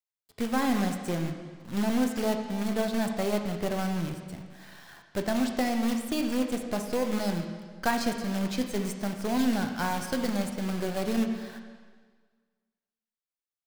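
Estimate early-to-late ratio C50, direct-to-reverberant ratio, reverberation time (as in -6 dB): 6.5 dB, 4.5 dB, 1.6 s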